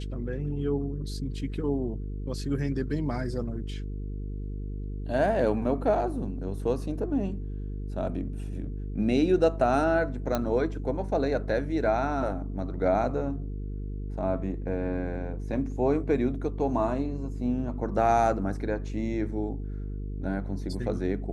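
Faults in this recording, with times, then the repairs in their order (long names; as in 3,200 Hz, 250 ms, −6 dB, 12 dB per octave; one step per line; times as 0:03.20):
mains buzz 50 Hz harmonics 9 −34 dBFS
0:10.35: click −13 dBFS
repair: click removal
hum removal 50 Hz, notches 9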